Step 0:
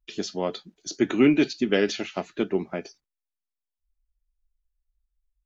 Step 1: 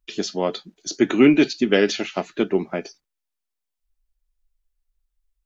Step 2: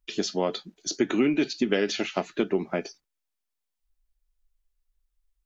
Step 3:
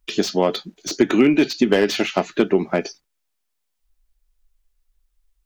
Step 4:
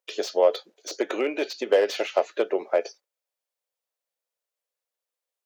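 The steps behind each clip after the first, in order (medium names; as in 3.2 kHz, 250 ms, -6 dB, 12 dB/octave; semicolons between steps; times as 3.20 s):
peaking EQ 67 Hz -15 dB 0.88 oct; trim +5 dB
compression 5:1, threshold -19 dBFS, peak gain reduction 9.5 dB; trim -1 dB
slew-rate limiter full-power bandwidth 130 Hz; trim +8 dB
ladder high-pass 470 Hz, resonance 65%; trim +3 dB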